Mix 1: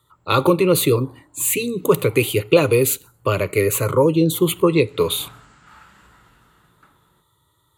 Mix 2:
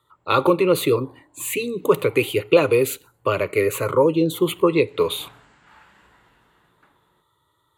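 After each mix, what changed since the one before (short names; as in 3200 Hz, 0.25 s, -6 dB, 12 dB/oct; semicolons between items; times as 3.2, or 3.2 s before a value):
background: add bell 1300 Hz -10 dB 0.27 oct; master: add tone controls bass -8 dB, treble -9 dB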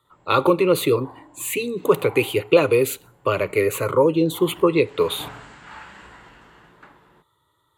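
background +11.0 dB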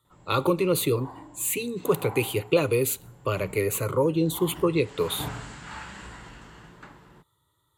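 speech -7.5 dB; master: add tone controls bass +8 dB, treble +9 dB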